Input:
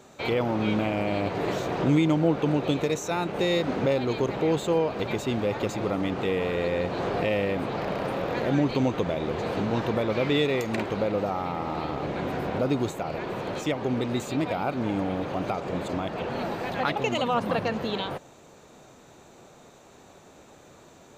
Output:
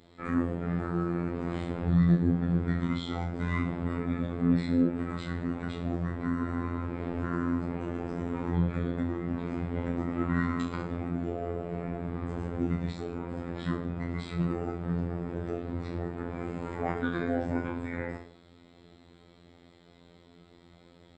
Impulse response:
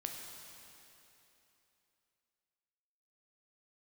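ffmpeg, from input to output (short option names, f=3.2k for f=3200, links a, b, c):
-af "asetrate=24046,aresample=44100,atempo=1.83401,aecho=1:1:30|64.5|104.2|149.8|202.3:0.631|0.398|0.251|0.158|0.1,afftfilt=real='hypot(re,im)*cos(PI*b)':imag='0':win_size=2048:overlap=0.75,volume=-3dB"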